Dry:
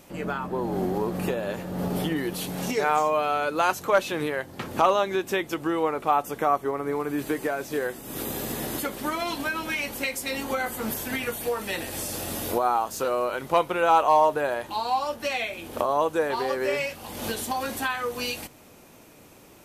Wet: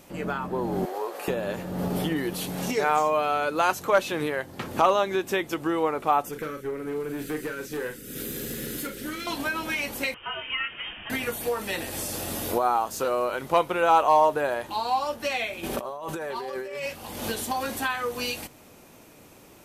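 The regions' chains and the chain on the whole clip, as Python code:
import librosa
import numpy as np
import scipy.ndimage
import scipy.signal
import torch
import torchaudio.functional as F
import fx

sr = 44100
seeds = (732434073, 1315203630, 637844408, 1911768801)

y = fx.chain(x, sr, fx.highpass(hz=470.0, slope=24),
    fx.doubler(ms=14.0, db=-11.5), at=(0.85, 1.28))
y = fx.chain(y, sr, fx.cheby1_bandstop(low_hz=510.0, high_hz=1400.0, order=3),
    fx.tube_stage(drive_db=26.0, bias=0.35),
    fx.doubler(ms=39.0, db=-7.5), at=(6.29, 9.27))
y = fx.chain(y, sr, fx.highpass(hz=600.0, slope=6),
    fx.freq_invert(carrier_hz=3400), at=(10.14, 11.1))
y = fx.chain(y, sr, fx.comb(ms=5.2, depth=0.51),
    fx.over_compress(threshold_db=-33.0, ratio=-1.0), at=(15.63, 16.86))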